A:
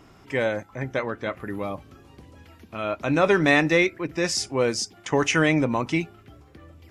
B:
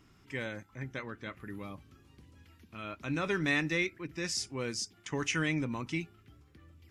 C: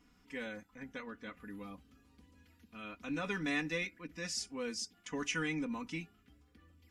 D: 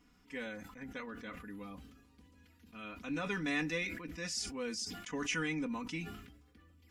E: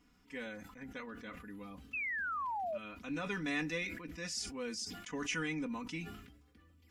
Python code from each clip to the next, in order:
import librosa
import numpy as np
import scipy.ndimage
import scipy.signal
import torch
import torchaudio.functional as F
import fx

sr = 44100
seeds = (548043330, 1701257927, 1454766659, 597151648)

y1 = fx.peak_eq(x, sr, hz=650.0, db=-11.5, octaves=1.4)
y1 = y1 * 10.0 ** (-8.0 / 20.0)
y2 = y1 + 0.96 * np.pad(y1, (int(4.1 * sr / 1000.0), 0))[:len(y1)]
y2 = y2 * 10.0 ** (-7.0 / 20.0)
y3 = fx.sustainer(y2, sr, db_per_s=55.0)
y4 = fx.spec_paint(y3, sr, seeds[0], shape='fall', start_s=1.93, length_s=0.85, low_hz=570.0, high_hz=2700.0, level_db=-36.0)
y4 = y4 * 10.0 ** (-1.5 / 20.0)